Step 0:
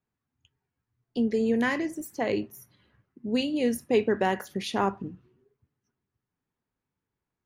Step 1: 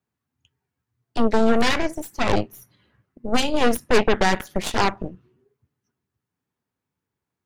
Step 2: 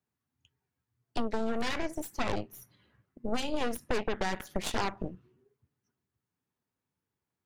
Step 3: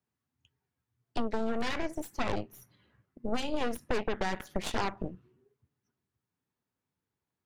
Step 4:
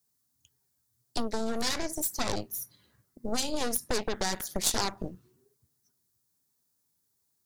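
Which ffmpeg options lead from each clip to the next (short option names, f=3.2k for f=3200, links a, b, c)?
-af "highpass=f=63:w=0.5412,highpass=f=63:w=1.3066,aeval=exprs='0.282*(cos(1*acos(clip(val(0)/0.282,-1,1)))-cos(1*PI/2))+0.1*(cos(8*acos(clip(val(0)/0.282,-1,1)))-cos(8*PI/2))':c=same,volume=2.5dB"
-af "acompressor=threshold=-21dB:ratio=10,volume=-4.5dB"
-af "highshelf=f=5.3k:g=-5"
-af "aexciter=amount=6.7:drive=3.8:freq=4k"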